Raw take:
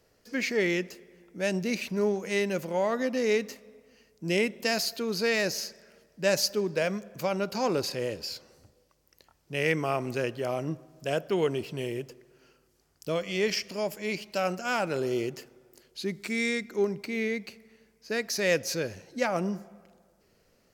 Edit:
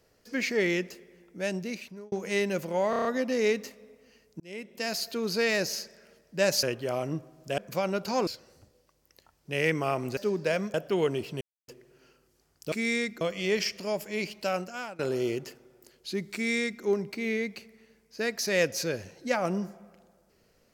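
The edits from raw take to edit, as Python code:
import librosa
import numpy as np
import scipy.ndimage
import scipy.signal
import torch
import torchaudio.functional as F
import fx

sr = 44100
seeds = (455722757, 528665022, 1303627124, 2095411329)

y = fx.edit(x, sr, fx.fade_out_span(start_s=0.91, length_s=1.21, curve='qsin'),
    fx.stutter(start_s=2.9, slice_s=0.03, count=6),
    fx.fade_in_span(start_s=4.25, length_s=0.79),
    fx.swap(start_s=6.48, length_s=0.57, other_s=10.19, other_length_s=0.95),
    fx.cut(start_s=7.74, length_s=0.55),
    fx.silence(start_s=11.81, length_s=0.27),
    fx.fade_out_to(start_s=14.35, length_s=0.55, floor_db=-21.5),
    fx.duplicate(start_s=16.25, length_s=0.49, to_s=13.12), tone=tone)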